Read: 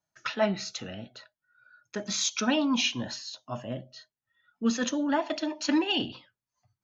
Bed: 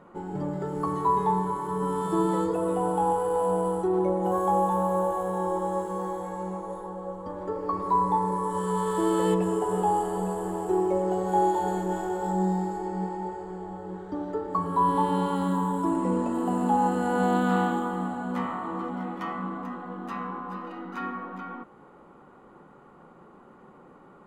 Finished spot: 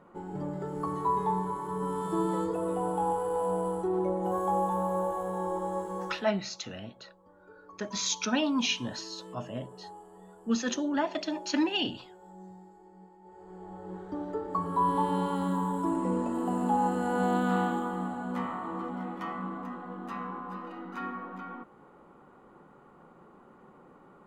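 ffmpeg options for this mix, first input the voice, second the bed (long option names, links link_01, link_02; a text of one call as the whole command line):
ffmpeg -i stem1.wav -i stem2.wav -filter_complex "[0:a]adelay=5850,volume=-2dB[link_01];[1:a]volume=15dB,afade=type=out:start_time=6.03:duration=0.24:silence=0.11885,afade=type=in:start_time=13.23:duration=0.74:silence=0.105925[link_02];[link_01][link_02]amix=inputs=2:normalize=0" out.wav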